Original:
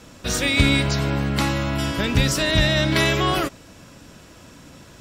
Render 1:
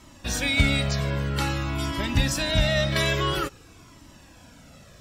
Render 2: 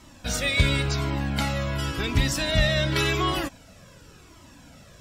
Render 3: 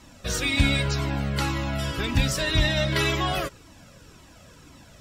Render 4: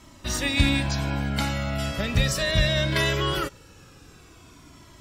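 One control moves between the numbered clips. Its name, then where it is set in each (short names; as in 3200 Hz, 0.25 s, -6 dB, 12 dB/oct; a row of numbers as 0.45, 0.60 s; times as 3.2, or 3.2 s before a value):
cascading flanger, rate: 0.5, 0.91, 1.9, 0.2 Hz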